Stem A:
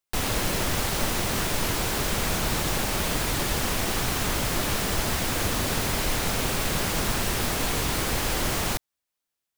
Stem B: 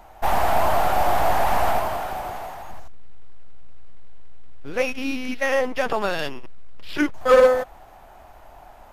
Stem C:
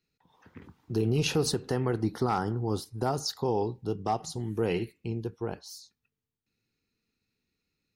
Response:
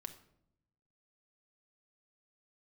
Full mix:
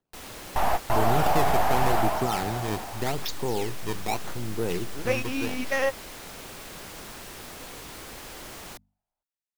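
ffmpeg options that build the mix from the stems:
-filter_complex "[0:a]bandreject=frequency=50:width_type=h:width=6,bandreject=frequency=100:width_type=h:width=6,bandreject=frequency=150:width_type=h:width=6,bandreject=frequency=200:width_type=h:width=6,bandreject=frequency=250:width_type=h:width=6,acrossover=split=210[link_01][link_02];[link_01]acompressor=threshold=-35dB:ratio=2.5[link_03];[link_03][link_02]amix=inputs=2:normalize=0,volume=-14dB[link_04];[1:a]adelay=300,volume=-3.5dB[link_05];[2:a]acrusher=samples=18:mix=1:aa=0.000001:lfo=1:lforange=28.8:lforate=0.82,volume=-1dB,asplit=2[link_06][link_07];[link_07]apad=whole_len=407027[link_08];[link_05][link_08]sidechaingate=range=-42dB:threshold=-55dB:ratio=16:detection=peak[link_09];[link_04][link_09][link_06]amix=inputs=3:normalize=0"

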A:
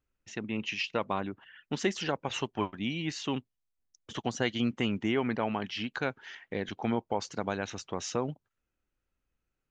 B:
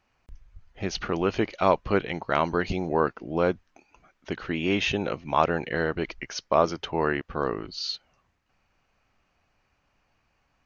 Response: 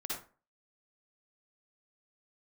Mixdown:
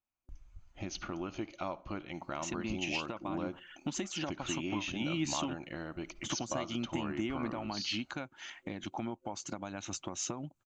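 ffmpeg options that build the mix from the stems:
-filter_complex "[0:a]acompressor=threshold=-35dB:ratio=6,alimiter=level_in=3dB:limit=-24dB:level=0:latency=1:release=418,volume=-3dB,adelay=2150,volume=3dB[link_01];[1:a]agate=range=-22dB:threshold=-59dB:ratio=16:detection=peak,acompressor=threshold=-35dB:ratio=3,volume=-4.5dB,asplit=2[link_02][link_03];[link_03]volume=-17.5dB[link_04];[2:a]atrim=start_sample=2205[link_05];[link_04][link_05]afir=irnorm=-1:irlink=0[link_06];[link_01][link_02][link_06]amix=inputs=3:normalize=0,superequalizer=6b=1.58:7b=0.316:11b=0.562:15b=2.24"

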